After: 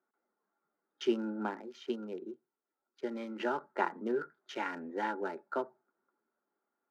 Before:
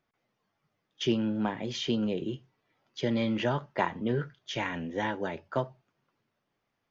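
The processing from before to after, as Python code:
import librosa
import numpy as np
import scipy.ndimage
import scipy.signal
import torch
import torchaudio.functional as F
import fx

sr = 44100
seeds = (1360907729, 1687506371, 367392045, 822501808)

y = fx.wiener(x, sr, points=15)
y = scipy.signal.sosfilt(scipy.signal.butter(6, 210.0, 'highpass', fs=sr, output='sos'), y)
y = fx.peak_eq(y, sr, hz=1400.0, db=13.0, octaves=0.25)
y = fx.notch(y, sr, hz=3400.0, q=13.0)
y = fx.small_body(y, sr, hz=(380.0, 850.0), ring_ms=45, db=8)
y = fx.upward_expand(y, sr, threshold_db=-41.0, expansion=1.5, at=(1.6, 3.39), fade=0.02)
y = F.gain(torch.from_numpy(y), -6.5).numpy()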